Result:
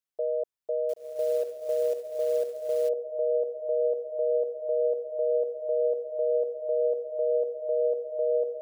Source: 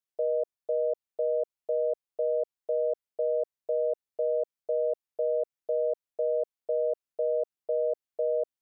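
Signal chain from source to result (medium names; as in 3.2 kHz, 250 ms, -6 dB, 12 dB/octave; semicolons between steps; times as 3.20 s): echo that smears into a reverb 1051 ms, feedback 40%, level -4 dB; 0.89–2.89 s: companded quantiser 6-bit; trim -1 dB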